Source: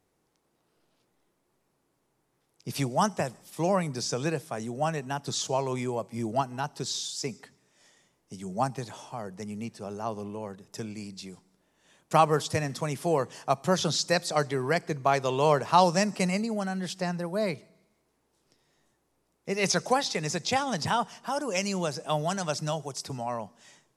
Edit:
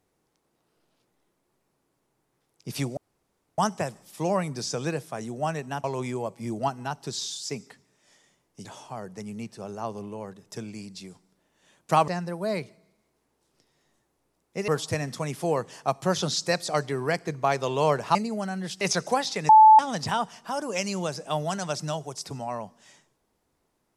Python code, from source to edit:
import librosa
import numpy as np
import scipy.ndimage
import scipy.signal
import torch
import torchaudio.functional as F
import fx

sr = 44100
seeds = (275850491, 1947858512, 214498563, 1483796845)

y = fx.edit(x, sr, fx.insert_room_tone(at_s=2.97, length_s=0.61),
    fx.cut(start_s=5.23, length_s=0.34),
    fx.cut(start_s=8.38, length_s=0.49),
    fx.cut(start_s=15.77, length_s=0.57),
    fx.move(start_s=17.0, length_s=2.6, to_s=12.3),
    fx.bleep(start_s=20.28, length_s=0.3, hz=870.0, db=-9.0), tone=tone)